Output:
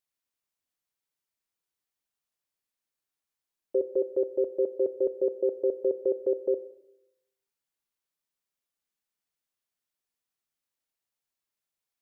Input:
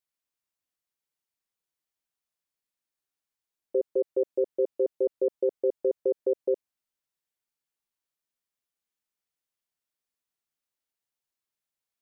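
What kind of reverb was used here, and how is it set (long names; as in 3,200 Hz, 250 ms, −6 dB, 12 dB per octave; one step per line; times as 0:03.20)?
four-comb reverb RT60 0.88 s, combs from 33 ms, DRR 13 dB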